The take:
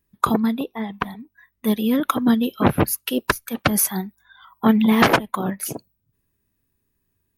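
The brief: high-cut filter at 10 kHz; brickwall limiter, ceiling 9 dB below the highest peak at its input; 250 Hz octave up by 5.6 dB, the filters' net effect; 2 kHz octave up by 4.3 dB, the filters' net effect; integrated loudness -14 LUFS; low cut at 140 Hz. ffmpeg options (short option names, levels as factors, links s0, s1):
-af "highpass=140,lowpass=10000,equalizer=f=250:t=o:g=7,equalizer=f=2000:t=o:g=5.5,volume=1.78,alimiter=limit=0.708:level=0:latency=1"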